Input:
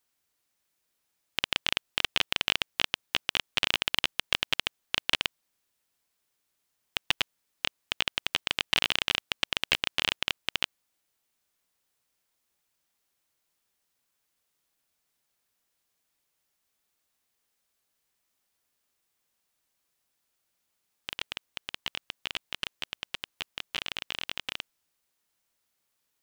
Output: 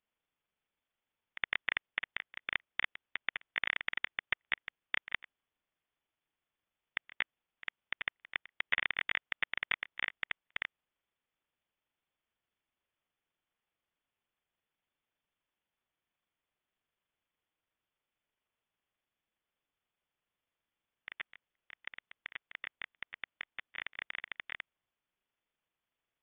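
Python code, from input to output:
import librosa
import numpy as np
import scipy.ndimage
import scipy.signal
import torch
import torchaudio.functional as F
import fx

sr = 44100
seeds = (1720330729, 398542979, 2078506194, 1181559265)

y = fx.pitch_heads(x, sr, semitones=-11.5)
y = fx.freq_invert(y, sr, carrier_hz=3500)
y = y * 10.0 ** (-7.0 / 20.0)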